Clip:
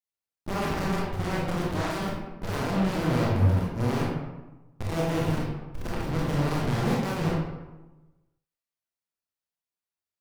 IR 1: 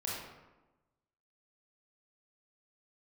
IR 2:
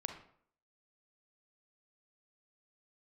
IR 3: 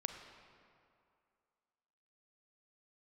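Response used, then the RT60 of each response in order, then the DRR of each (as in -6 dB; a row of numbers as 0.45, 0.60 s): 1; 1.1, 0.60, 2.4 s; -5.5, 5.0, 5.5 dB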